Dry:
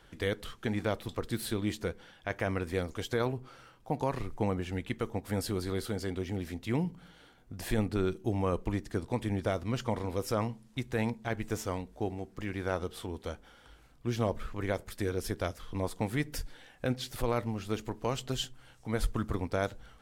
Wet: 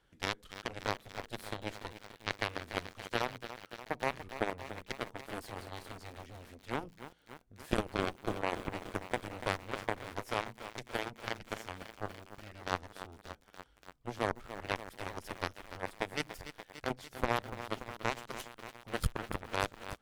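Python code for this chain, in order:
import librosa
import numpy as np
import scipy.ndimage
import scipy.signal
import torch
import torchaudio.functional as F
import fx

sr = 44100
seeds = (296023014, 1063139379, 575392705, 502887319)

y = fx.cheby_harmonics(x, sr, harmonics=(2, 3, 6), levels_db=(-15, -8, -37), full_scale_db=-18.5)
y = fx.echo_crushed(y, sr, ms=289, feedback_pct=80, bits=8, wet_db=-11.5)
y = y * 10.0 ** (1.5 / 20.0)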